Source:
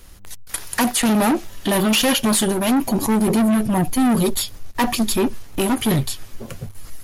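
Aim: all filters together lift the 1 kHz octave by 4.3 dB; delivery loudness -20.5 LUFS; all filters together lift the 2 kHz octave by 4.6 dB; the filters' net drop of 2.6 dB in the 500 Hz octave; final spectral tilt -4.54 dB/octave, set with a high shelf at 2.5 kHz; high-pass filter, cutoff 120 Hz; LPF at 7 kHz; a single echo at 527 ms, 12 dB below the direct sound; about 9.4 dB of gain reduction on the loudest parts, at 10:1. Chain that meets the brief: high-pass 120 Hz; low-pass 7 kHz; peaking EQ 500 Hz -5.5 dB; peaking EQ 1 kHz +6.5 dB; peaking EQ 2 kHz +7 dB; treble shelf 2.5 kHz -6 dB; compression 10:1, threshold -21 dBFS; delay 527 ms -12 dB; trim +6 dB

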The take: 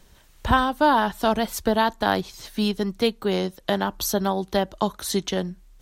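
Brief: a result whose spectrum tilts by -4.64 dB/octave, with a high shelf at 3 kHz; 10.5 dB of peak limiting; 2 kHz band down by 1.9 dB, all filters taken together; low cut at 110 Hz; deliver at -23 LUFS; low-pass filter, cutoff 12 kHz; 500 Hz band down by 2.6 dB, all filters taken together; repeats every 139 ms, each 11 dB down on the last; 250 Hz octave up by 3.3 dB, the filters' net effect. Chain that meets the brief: high-pass 110 Hz; low-pass 12 kHz; peaking EQ 250 Hz +5.5 dB; peaking EQ 500 Hz -5 dB; peaking EQ 2 kHz -4 dB; treble shelf 3 kHz +5 dB; peak limiter -16 dBFS; feedback delay 139 ms, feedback 28%, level -11 dB; trim +3.5 dB

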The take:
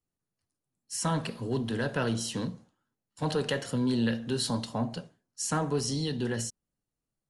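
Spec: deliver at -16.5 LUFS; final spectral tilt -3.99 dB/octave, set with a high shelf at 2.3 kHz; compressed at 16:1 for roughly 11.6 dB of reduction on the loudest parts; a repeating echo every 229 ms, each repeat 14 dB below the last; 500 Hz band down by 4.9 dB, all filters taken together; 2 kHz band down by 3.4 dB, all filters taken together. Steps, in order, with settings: peaking EQ 500 Hz -6 dB; peaking EQ 2 kHz -6 dB; treble shelf 2.3 kHz +3.5 dB; compression 16:1, threshold -37 dBFS; feedback delay 229 ms, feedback 20%, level -14 dB; trim +24.5 dB

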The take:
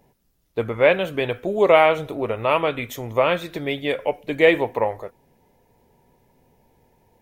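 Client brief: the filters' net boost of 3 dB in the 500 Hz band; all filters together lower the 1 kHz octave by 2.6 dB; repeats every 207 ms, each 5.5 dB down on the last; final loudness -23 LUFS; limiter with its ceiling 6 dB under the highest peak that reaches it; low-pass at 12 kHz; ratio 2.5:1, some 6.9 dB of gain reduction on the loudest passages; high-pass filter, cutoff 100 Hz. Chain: high-pass 100 Hz; low-pass 12 kHz; peaking EQ 500 Hz +5 dB; peaking EQ 1 kHz -5.5 dB; compression 2.5:1, threshold -18 dBFS; peak limiter -13.5 dBFS; feedback delay 207 ms, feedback 53%, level -5.5 dB; trim +1 dB

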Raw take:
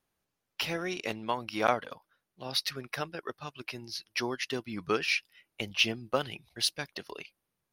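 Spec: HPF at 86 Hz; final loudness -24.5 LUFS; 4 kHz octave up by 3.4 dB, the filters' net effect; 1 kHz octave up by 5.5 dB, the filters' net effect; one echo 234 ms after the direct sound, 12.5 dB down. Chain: high-pass 86 Hz; peaking EQ 1 kHz +7 dB; peaking EQ 4 kHz +4 dB; delay 234 ms -12.5 dB; trim +5 dB

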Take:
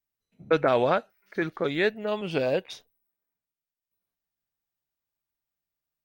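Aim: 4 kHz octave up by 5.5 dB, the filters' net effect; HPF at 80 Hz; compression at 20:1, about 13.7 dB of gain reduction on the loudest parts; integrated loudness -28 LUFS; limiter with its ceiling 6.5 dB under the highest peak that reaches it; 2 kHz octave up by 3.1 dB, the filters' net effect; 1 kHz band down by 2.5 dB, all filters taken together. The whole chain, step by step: high-pass 80 Hz; peaking EQ 1 kHz -5.5 dB; peaking EQ 2 kHz +4.5 dB; peaking EQ 4 kHz +5.5 dB; compression 20:1, threshold -31 dBFS; trim +11.5 dB; peak limiter -16 dBFS

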